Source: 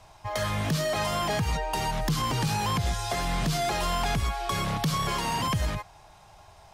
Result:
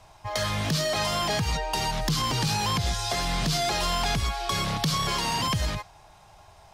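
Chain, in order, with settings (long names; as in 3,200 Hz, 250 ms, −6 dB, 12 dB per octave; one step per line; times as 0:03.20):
dynamic equaliser 4,600 Hz, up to +7 dB, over −50 dBFS, Q 1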